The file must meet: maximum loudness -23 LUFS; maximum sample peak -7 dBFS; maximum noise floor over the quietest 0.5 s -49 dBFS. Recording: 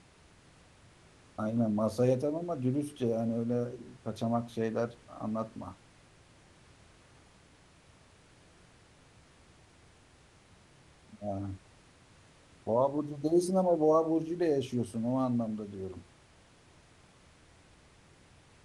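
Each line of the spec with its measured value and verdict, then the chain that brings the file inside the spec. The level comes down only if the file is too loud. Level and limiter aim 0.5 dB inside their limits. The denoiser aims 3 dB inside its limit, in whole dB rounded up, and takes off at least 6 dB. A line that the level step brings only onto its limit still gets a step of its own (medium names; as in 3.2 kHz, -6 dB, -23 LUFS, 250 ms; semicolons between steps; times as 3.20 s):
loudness -32.0 LUFS: pass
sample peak -15.5 dBFS: pass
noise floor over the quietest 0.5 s -61 dBFS: pass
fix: none needed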